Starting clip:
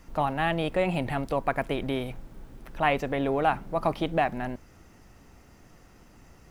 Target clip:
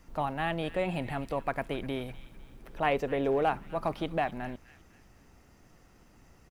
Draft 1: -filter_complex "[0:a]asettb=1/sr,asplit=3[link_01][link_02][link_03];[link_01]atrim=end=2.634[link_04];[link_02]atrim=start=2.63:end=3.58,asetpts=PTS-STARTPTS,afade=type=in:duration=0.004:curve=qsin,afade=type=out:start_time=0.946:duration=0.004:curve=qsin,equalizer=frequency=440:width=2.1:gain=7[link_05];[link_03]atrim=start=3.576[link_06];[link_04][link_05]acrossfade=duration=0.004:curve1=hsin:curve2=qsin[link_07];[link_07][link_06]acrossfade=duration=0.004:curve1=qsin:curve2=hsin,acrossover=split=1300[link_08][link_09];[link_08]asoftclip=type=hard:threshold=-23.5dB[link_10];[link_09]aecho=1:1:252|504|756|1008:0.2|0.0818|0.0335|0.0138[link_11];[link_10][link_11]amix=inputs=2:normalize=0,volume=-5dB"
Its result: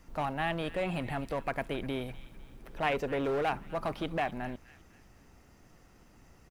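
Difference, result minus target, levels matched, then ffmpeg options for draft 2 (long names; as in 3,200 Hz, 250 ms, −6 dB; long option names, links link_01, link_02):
hard clipping: distortion +20 dB
-filter_complex "[0:a]asettb=1/sr,asplit=3[link_01][link_02][link_03];[link_01]atrim=end=2.634[link_04];[link_02]atrim=start=2.63:end=3.58,asetpts=PTS-STARTPTS,afade=type=in:duration=0.004:curve=qsin,afade=type=out:start_time=0.946:duration=0.004:curve=qsin,equalizer=frequency=440:width=2.1:gain=7[link_05];[link_03]atrim=start=3.576[link_06];[link_04][link_05]acrossfade=duration=0.004:curve1=hsin:curve2=qsin[link_07];[link_07][link_06]acrossfade=duration=0.004:curve1=qsin:curve2=hsin,acrossover=split=1300[link_08][link_09];[link_08]asoftclip=type=hard:threshold=-16dB[link_10];[link_09]aecho=1:1:252|504|756|1008:0.2|0.0818|0.0335|0.0138[link_11];[link_10][link_11]amix=inputs=2:normalize=0,volume=-5dB"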